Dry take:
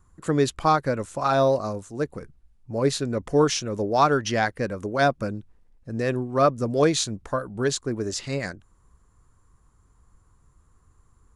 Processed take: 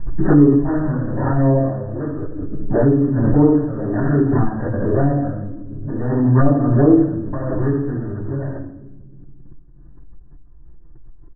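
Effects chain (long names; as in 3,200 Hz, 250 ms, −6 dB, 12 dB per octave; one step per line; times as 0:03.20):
running median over 41 samples
comb filter 3.1 ms, depth 35%
echo with a time of its own for lows and highs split 340 Hz, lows 230 ms, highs 82 ms, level −13 dB
decimation without filtering 12×
flanger swept by the level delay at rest 6.2 ms, full sweep at −18 dBFS
linear-phase brick-wall low-pass 1,900 Hz
convolution reverb RT60 0.65 s, pre-delay 7 ms, DRR −6.5 dB
background raised ahead of every attack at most 27 dB per second
level −4.5 dB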